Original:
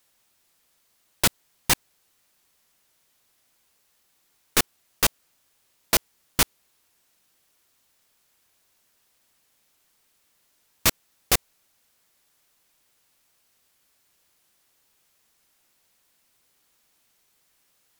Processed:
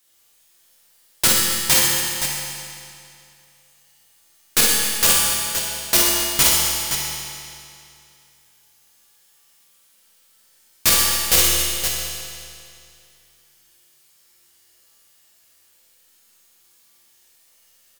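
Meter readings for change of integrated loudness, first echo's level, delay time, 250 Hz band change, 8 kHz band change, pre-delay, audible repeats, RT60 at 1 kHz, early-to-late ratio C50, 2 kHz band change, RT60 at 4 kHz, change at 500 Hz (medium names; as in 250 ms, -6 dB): +7.5 dB, -4.0 dB, 46 ms, +4.5 dB, +11.0 dB, 6 ms, 2, 2.6 s, -3.0 dB, +6.5 dB, 2.4 s, +5.5 dB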